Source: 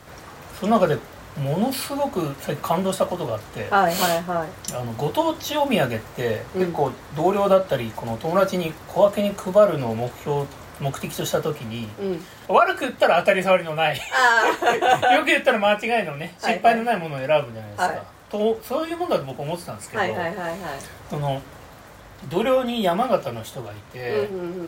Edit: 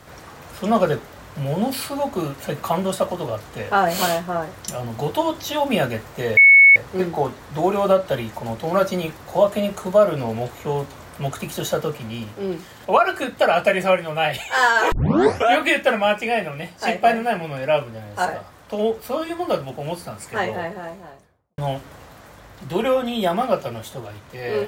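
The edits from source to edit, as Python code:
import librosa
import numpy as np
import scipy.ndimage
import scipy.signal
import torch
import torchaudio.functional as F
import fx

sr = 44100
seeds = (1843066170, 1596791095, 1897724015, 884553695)

y = fx.studio_fade_out(x, sr, start_s=19.94, length_s=1.25)
y = fx.edit(y, sr, fx.insert_tone(at_s=6.37, length_s=0.39, hz=2210.0, db=-6.0),
    fx.tape_start(start_s=14.53, length_s=0.6), tone=tone)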